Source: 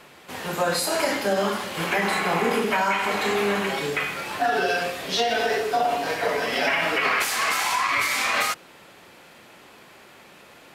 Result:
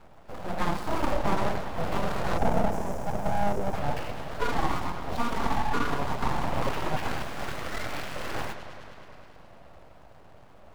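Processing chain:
running median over 25 samples
parametric band 300 Hz +14 dB 1.1 octaves
on a send: bucket-brigade delay 105 ms, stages 4,096, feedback 81%, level −12 dB
on the sum: time-frequency box erased 0:02.37–0:03.74, 600–5,100 Hz
full-wave rectification
level −4.5 dB

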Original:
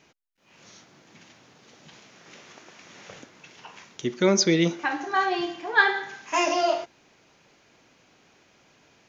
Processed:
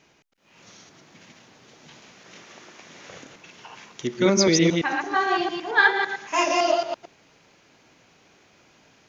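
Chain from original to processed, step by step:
delay that plays each chunk backwards 112 ms, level −1.5 dB

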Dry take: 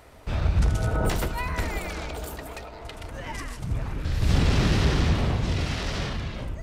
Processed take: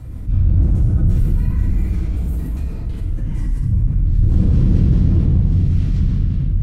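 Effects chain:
drawn EQ curve 180 Hz 0 dB, 560 Hz −25 dB, 4,900 Hz −26 dB, 12,000 Hz −18 dB
hard clipping −19 dBFS, distortion −14 dB
rotating-speaker cabinet horn 5 Hz
convolution reverb RT60 1.3 s, pre-delay 3 ms, DRR −9.5 dB
envelope flattener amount 50%

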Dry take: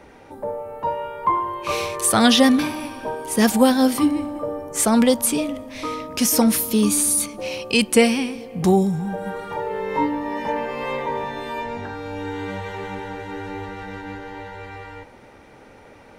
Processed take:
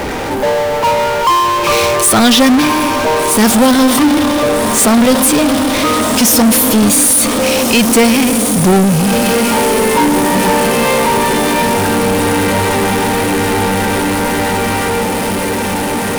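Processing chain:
feedback delay with all-pass diffusion 1,546 ms, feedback 67%, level −11.5 dB
power curve on the samples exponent 0.35

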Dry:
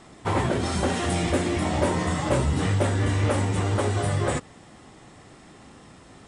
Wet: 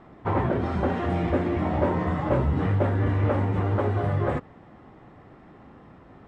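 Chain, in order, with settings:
low-pass filter 1,600 Hz 12 dB per octave

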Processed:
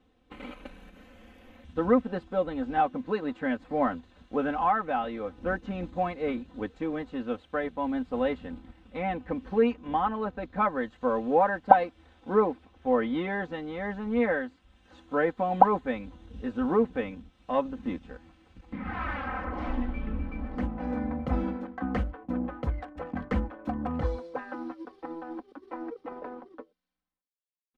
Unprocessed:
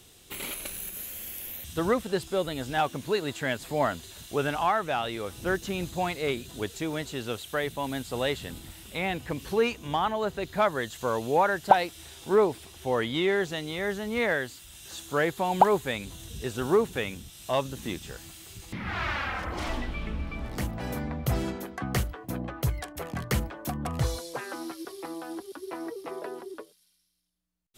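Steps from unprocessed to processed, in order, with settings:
mu-law and A-law mismatch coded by A
low-pass filter 1,500 Hz 12 dB per octave
parametric band 250 Hz +5.5 dB 0.21 octaves
comb filter 3.9 ms, depth 86%
level −1 dB

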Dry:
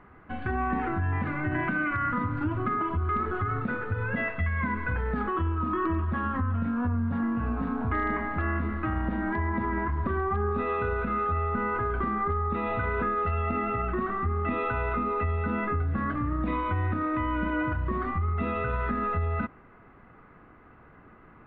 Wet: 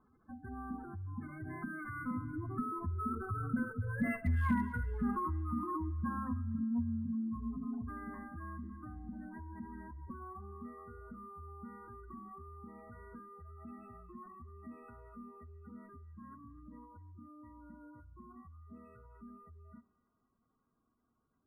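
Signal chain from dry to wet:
source passing by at 0:04.34, 11 m/s, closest 2.6 metres
high-shelf EQ 2,200 Hz −8 dB
gate on every frequency bin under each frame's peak −15 dB strong
asymmetric clip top −26 dBFS, bottom −24.5 dBFS
on a send at −21 dB: convolution reverb RT60 0.85 s, pre-delay 44 ms
on the sum: speech leveller within 5 dB 0.5 s
hollow resonant body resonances 240/1,100 Hz, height 11 dB, ringing for 100 ms
dynamic equaliser 460 Hz, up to −5 dB, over −58 dBFS, Q 1.4
delay with a high-pass on its return 251 ms, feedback 55%, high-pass 2,000 Hz, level −14 dB
linearly interpolated sample-rate reduction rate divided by 4×
level +3 dB

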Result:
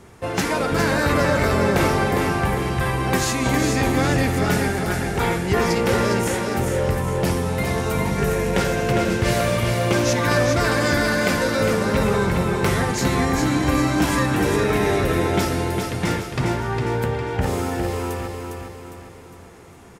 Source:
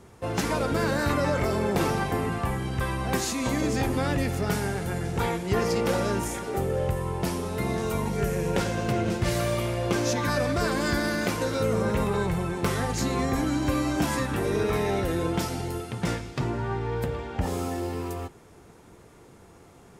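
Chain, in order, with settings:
parametric band 1,900 Hz +3.5 dB 0.95 octaves
hum removal 55.49 Hz, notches 37
on a send: repeating echo 406 ms, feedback 45%, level −5 dB
on the sum: level +5 dB

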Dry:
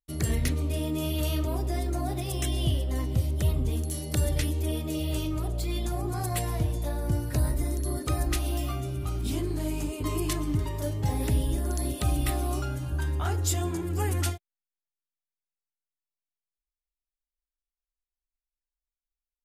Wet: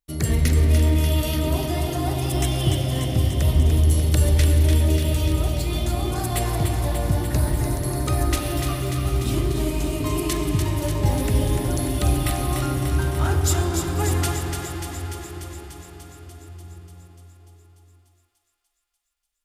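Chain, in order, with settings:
feedback echo with a high-pass in the loop 294 ms, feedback 73%, high-pass 890 Hz, level −5.5 dB
on a send at −2.5 dB: convolution reverb RT60 6.2 s, pre-delay 38 ms
on the sum: level +4.5 dB

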